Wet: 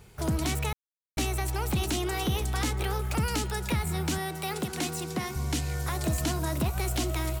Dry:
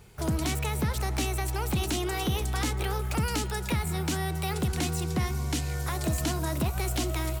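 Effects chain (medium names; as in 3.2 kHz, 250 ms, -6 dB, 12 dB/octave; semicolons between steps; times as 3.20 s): 0.73–1.17 s: mute; 4.18–5.36 s: high-pass 190 Hz 12 dB/octave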